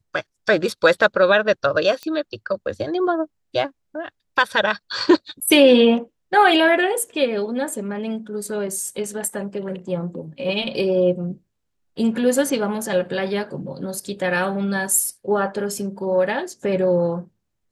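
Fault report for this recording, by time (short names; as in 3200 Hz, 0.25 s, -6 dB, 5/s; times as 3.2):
2.03 pop -17 dBFS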